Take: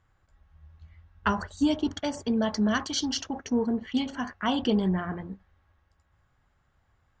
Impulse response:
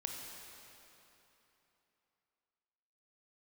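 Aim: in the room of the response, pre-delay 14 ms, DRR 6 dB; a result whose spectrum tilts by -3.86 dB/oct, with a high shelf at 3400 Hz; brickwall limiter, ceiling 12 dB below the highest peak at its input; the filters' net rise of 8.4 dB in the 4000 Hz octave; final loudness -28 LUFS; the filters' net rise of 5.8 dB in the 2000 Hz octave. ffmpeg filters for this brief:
-filter_complex "[0:a]equalizer=f=2k:t=o:g=5,highshelf=f=3.4k:g=7,equalizer=f=4k:t=o:g=4.5,alimiter=limit=-20dB:level=0:latency=1,asplit=2[a][b];[1:a]atrim=start_sample=2205,adelay=14[c];[b][c]afir=irnorm=-1:irlink=0,volume=-6dB[d];[a][d]amix=inputs=2:normalize=0,volume=1dB"

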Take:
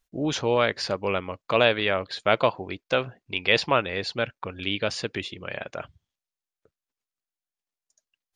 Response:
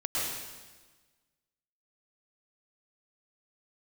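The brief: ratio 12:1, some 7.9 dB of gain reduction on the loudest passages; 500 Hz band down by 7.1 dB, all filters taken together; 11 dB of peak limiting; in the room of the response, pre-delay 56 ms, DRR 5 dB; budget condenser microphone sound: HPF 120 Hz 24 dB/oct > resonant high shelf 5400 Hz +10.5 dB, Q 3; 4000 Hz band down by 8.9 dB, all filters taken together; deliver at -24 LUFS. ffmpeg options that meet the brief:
-filter_complex "[0:a]equalizer=f=500:t=o:g=-8.5,equalizer=f=4k:t=o:g=-7,acompressor=threshold=-26dB:ratio=12,alimiter=limit=-23dB:level=0:latency=1,asplit=2[a][b];[1:a]atrim=start_sample=2205,adelay=56[c];[b][c]afir=irnorm=-1:irlink=0,volume=-13dB[d];[a][d]amix=inputs=2:normalize=0,highpass=f=120:w=0.5412,highpass=f=120:w=1.3066,highshelf=f=5.4k:t=q:w=3:g=10.5,volume=10.5dB"

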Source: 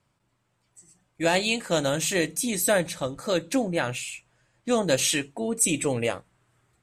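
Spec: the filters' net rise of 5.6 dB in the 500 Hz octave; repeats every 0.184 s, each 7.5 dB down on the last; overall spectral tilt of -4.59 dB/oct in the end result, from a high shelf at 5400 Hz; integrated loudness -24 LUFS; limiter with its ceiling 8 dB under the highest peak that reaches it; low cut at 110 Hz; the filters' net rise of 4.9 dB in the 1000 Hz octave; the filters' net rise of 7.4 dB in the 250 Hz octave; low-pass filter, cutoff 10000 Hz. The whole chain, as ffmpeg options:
-af "highpass=110,lowpass=10k,equalizer=f=250:t=o:g=8,equalizer=f=500:t=o:g=3.5,equalizer=f=1k:t=o:g=5,highshelf=f=5.4k:g=-8.5,alimiter=limit=-13.5dB:level=0:latency=1,aecho=1:1:184|368|552|736|920:0.422|0.177|0.0744|0.0312|0.0131,volume=0.5dB"

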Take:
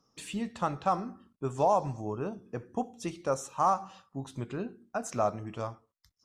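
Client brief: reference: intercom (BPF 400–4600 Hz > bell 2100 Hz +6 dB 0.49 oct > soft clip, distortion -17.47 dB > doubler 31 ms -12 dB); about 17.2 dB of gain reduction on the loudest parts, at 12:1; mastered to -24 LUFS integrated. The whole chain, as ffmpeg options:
-filter_complex "[0:a]acompressor=threshold=-38dB:ratio=12,highpass=400,lowpass=4.6k,equalizer=f=2.1k:t=o:w=0.49:g=6,asoftclip=threshold=-33dB,asplit=2[a][b];[b]adelay=31,volume=-12dB[c];[a][c]amix=inputs=2:normalize=0,volume=23.5dB"

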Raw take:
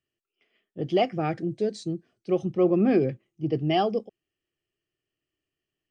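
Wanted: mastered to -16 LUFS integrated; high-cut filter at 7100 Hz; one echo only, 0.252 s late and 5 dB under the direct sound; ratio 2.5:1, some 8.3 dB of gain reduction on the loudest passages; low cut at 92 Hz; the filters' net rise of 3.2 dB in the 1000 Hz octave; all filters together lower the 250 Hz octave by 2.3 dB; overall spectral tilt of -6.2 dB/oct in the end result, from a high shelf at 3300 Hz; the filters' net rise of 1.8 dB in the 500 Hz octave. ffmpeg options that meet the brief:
-af "highpass=92,lowpass=7.1k,equalizer=f=250:t=o:g=-6,equalizer=f=500:t=o:g=4,equalizer=f=1k:t=o:g=3.5,highshelf=f=3.3k:g=-3.5,acompressor=threshold=-29dB:ratio=2.5,aecho=1:1:252:0.562,volume=15dB"

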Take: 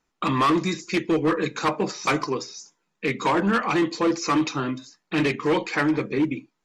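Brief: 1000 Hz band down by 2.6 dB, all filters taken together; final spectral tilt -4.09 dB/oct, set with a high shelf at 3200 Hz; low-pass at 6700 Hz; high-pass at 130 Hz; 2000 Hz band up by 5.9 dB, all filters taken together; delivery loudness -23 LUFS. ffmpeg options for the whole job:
-af "highpass=130,lowpass=6.7k,equalizer=f=1k:t=o:g=-6,equalizer=f=2k:t=o:g=7,highshelf=f=3.2k:g=5.5"

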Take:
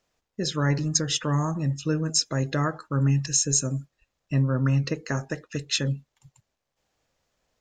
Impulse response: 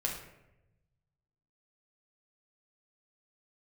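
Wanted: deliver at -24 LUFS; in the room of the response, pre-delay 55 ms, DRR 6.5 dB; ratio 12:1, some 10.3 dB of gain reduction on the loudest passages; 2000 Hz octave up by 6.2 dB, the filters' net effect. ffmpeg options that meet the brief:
-filter_complex "[0:a]equalizer=f=2k:t=o:g=8,acompressor=threshold=-28dB:ratio=12,asplit=2[a][b];[1:a]atrim=start_sample=2205,adelay=55[c];[b][c]afir=irnorm=-1:irlink=0,volume=-10.5dB[d];[a][d]amix=inputs=2:normalize=0,volume=8dB"

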